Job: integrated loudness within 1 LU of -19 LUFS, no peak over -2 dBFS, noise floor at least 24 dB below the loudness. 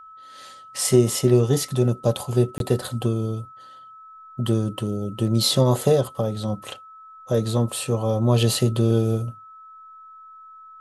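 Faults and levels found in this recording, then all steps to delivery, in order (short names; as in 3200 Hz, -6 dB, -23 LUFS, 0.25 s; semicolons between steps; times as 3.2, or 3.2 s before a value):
dropouts 1; longest dropout 22 ms; steady tone 1300 Hz; tone level -42 dBFS; loudness -22.0 LUFS; peak -4.0 dBFS; loudness target -19.0 LUFS
-> interpolate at 2.58, 22 ms; notch 1300 Hz, Q 30; gain +3 dB; limiter -2 dBFS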